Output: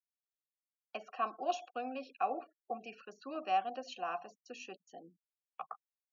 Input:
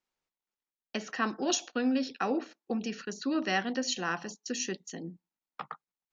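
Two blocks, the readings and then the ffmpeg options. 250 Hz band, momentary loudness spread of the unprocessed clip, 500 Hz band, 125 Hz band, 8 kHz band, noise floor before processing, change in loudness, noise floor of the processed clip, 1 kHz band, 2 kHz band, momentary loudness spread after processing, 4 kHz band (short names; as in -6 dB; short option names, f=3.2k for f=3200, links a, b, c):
-17.5 dB, 15 LU, -6.0 dB, under -20 dB, n/a, under -85 dBFS, -7.5 dB, under -85 dBFS, +1.0 dB, -12.5 dB, 17 LU, -14.0 dB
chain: -filter_complex "[0:a]afftfilt=real='re*gte(hypot(re,im),0.00562)':imag='im*gte(hypot(re,im),0.00562)':win_size=1024:overlap=0.75,asplit=3[a][b][c];[a]bandpass=f=730:t=q:w=8,volume=0dB[d];[b]bandpass=f=1.09k:t=q:w=8,volume=-6dB[e];[c]bandpass=f=2.44k:t=q:w=8,volume=-9dB[f];[d][e][f]amix=inputs=3:normalize=0,volume=5dB"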